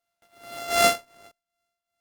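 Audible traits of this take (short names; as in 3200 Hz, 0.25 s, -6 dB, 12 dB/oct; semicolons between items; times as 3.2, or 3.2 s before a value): a buzz of ramps at a fixed pitch in blocks of 64 samples; tremolo triangle 2.6 Hz, depth 80%; Opus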